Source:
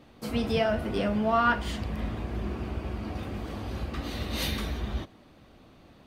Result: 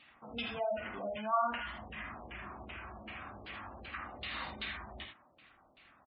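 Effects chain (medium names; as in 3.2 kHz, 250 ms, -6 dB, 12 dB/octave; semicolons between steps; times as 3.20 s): pre-emphasis filter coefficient 0.97; LFO low-pass saw down 2.6 Hz 440–2800 Hz; peaking EQ 460 Hz -7 dB 0.62 oct; multi-tap echo 51/80 ms -7/-7.5 dB; in parallel at -4 dB: saturation -35.5 dBFS, distortion -13 dB; on the sum: spectral gate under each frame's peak -20 dB strong; trim +4.5 dB; Vorbis 48 kbps 22.05 kHz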